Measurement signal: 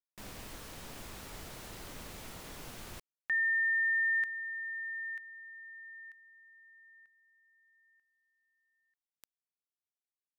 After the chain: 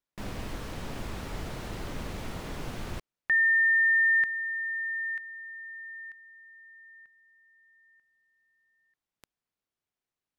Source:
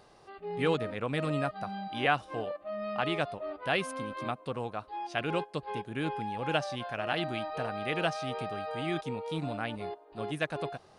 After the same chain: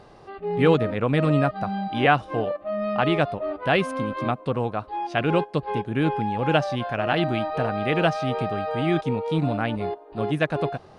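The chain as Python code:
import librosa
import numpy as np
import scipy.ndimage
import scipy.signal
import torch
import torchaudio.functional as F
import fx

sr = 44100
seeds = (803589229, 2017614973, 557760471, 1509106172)

y = fx.lowpass(x, sr, hz=3100.0, slope=6)
y = fx.low_shelf(y, sr, hz=400.0, db=5.0)
y = F.gain(torch.from_numpy(y), 8.0).numpy()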